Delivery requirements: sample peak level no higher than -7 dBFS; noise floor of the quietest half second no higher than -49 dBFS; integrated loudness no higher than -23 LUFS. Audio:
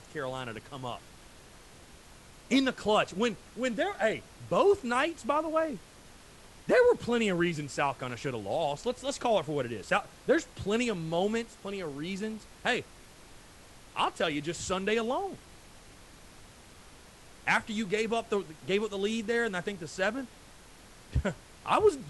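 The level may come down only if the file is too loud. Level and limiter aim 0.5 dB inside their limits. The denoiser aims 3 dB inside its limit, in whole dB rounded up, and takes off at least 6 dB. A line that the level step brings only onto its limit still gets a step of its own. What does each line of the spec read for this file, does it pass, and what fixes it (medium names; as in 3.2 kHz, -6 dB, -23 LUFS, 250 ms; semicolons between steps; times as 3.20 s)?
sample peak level -12.0 dBFS: pass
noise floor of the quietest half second -53 dBFS: pass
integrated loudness -30.5 LUFS: pass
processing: none needed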